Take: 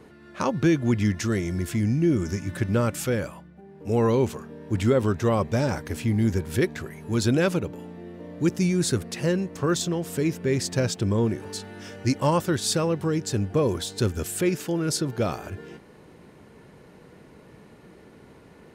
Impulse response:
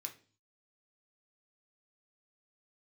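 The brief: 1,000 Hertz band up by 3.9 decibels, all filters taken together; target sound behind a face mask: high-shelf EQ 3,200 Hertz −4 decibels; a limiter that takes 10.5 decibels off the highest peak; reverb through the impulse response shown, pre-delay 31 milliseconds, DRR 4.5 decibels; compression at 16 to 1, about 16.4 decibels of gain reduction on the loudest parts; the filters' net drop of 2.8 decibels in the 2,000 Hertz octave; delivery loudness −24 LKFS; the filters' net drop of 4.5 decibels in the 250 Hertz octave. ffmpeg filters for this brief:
-filter_complex "[0:a]equalizer=frequency=250:width_type=o:gain=-7,equalizer=frequency=1000:width_type=o:gain=6.5,equalizer=frequency=2000:width_type=o:gain=-5,acompressor=threshold=-32dB:ratio=16,alimiter=level_in=5.5dB:limit=-24dB:level=0:latency=1,volume=-5.5dB,asplit=2[link_01][link_02];[1:a]atrim=start_sample=2205,adelay=31[link_03];[link_02][link_03]afir=irnorm=-1:irlink=0,volume=-1dB[link_04];[link_01][link_04]amix=inputs=2:normalize=0,highshelf=frequency=3200:gain=-4,volume=14.5dB"

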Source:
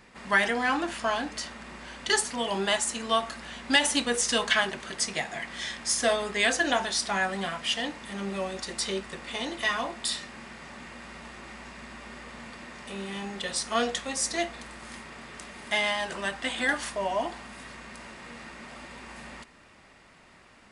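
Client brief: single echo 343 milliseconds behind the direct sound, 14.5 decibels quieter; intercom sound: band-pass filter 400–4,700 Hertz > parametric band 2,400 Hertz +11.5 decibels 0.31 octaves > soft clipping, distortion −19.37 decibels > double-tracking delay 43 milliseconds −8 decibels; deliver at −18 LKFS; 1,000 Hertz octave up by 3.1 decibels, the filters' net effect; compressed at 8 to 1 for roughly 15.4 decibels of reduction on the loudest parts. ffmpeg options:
ffmpeg -i in.wav -filter_complex "[0:a]equalizer=frequency=1000:width_type=o:gain=4,acompressor=threshold=-33dB:ratio=8,highpass=400,lowpass=4700,equalizer=frequency=2400:width_type=o:width=0.31:gain=11.5,aecho=1:1:343:0.188,asoftclip=threshold=-25.5dB,asplit=2[link_01][link_02];[link_02]adelay=43,volume=-8dB[link_03];[link_01][link_03]amix=inputs=2:normalize=0,volume=18.5dB" out.wav

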